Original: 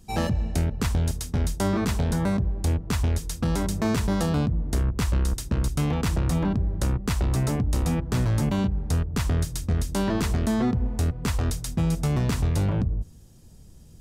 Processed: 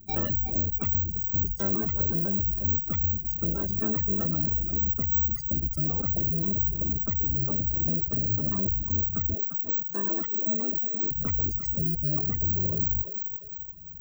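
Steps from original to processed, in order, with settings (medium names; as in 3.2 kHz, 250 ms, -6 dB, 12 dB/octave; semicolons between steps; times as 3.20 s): valve stage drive 30 dB, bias 0.75; careless resampling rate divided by 2×, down none, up zero stuff; hum notches 60/120/180/240/300/360/420 Hz; 9.34–11.11 s: high-pass 260 Hz 12 dB/octave; dynamic bell 820 Hz, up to -4 dB, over -54 dBFS, Q 1.6; thinning echo 348 ms, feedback 49%, high-pass 450 Hz, level -4.5 dB; spectral gate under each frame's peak -20 dB strong; reverb removal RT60 0.67 s; trim +4 dB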